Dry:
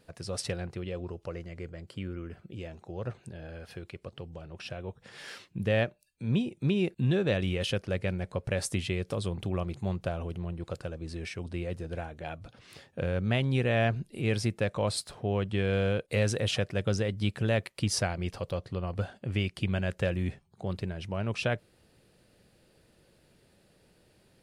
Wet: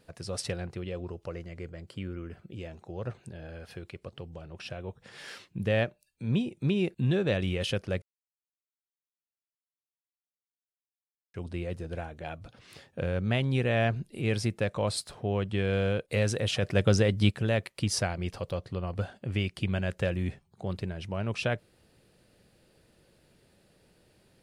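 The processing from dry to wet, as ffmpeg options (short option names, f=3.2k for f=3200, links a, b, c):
-filter_complex "[0:a]asplit=3[a][b][c];[a]afade=t=out:st=16.62:d=0.02[d];[b]acontrast=45,afade=t=in:st=16.62:d=0.02,afade=t=out:st=17.3:d=0.02[e];[c]afade=t=in:st=17.3:d=0.02[f];[d][e][f]amix=inputs=3:normalize=0,asplit=3[g][h][i];[g]atrim=end=8.02,asetpts=PTS-STARTPTS,afade=t=out:st=8.016:d=0.004:c=hsin[j];[h]atrim=start=8.02:end=11.34,asetpts=PTS-STARTPTS,volume=0[k];[i]atrim=start=11.34,asetpts=PTS-STARTPTS,afade=t=in:d=0.004:c=hsin[l];[j][k][l]concat=n=3:v=0:a=1"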